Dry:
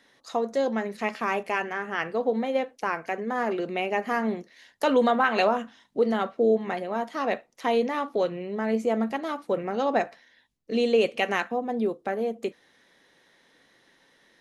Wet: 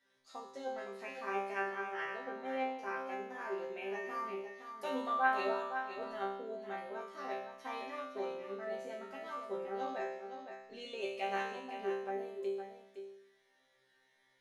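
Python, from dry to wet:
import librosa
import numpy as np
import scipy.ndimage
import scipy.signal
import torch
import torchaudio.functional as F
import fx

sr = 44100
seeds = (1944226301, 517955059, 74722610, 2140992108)

p1 = fx.peak_eq(x, sr, hz=200.0, db=-8.0, octaves=0.68)
p2 = fx.resonator_bank(p1, sr, root=48, chord='fifth', decay_s=0.85)
p3 = p2 + fx.echo_single(p2, sr, ms=513, db=-8.5, dry=0)
y = p3 * 10.0 ** (5.5 / 20.0)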